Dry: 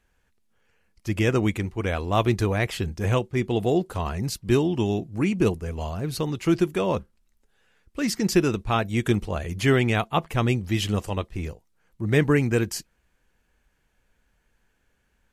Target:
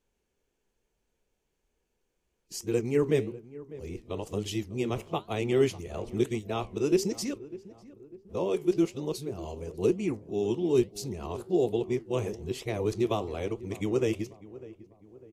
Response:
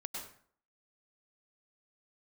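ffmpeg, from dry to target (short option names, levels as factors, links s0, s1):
-filter_complex "[0:a]areverse,lowshelf=f=210:g=-4,flanger=delay=5.9:depth=10:regen=-76:speed=1.1:shape=triangular,equalizer=f=400:t=o:w=0.67:g=9,equalizer=f=1600:t=o:w=0.67:g=-10,equalizer=f=6300:t=o:w=0.67:g=4,asplit=2[s0][s1];[s1]adelay=599,lowpass=f=1300:p=1,volume=0.133,asplit=2[s2][s3];[s3]adelay=599,lowpass=f=1300:p=1,volume=0.48,asplit=2[s4][s5];[s5]adelay=599,lowpass=f=1300:p=1,volume=0.48,asplit=2[s6][s7];[s7]adelay=599,lowpass=f=1300:p=1,volume=0.48[s8];[s0][s2][s4][s6][s8]amix=inputs=5:normalize=0,volume=0.631"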